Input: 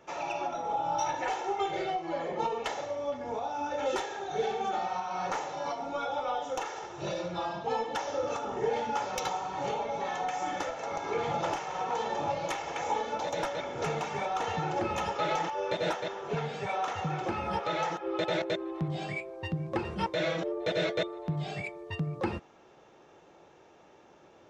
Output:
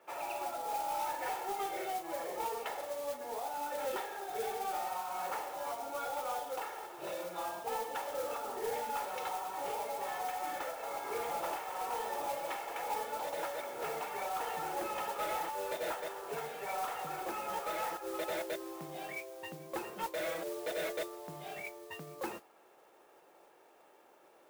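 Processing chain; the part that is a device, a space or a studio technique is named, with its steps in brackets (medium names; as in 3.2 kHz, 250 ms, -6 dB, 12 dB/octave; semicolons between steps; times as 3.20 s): carbon microphone (band-pass 400–2800 Hz; saturation -26 dBFS, distortion -18 dB; modulation noise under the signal 12 dB); trim -3.5 dB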